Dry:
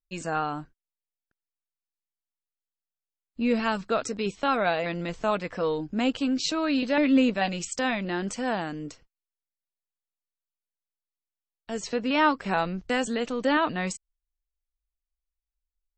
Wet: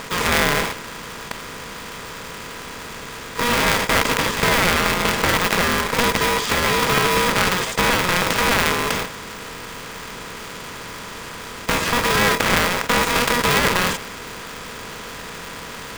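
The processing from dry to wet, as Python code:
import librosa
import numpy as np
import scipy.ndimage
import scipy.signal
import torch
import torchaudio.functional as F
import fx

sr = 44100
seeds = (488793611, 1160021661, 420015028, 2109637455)

y = fx.bin_compress(x, sr, power=0.2)
y = fx.dynamic_eq(y, sr, hz=1400.0, q=0.87, threshold_db=-28.0, ratio=4.0, max_db=5)
y = y * np.sign(np.sin(2.0 * np.pi * 720.0 * np.arange(len(y)) / sr))
y = y * 10.0 ** (-4.0 / 20.0)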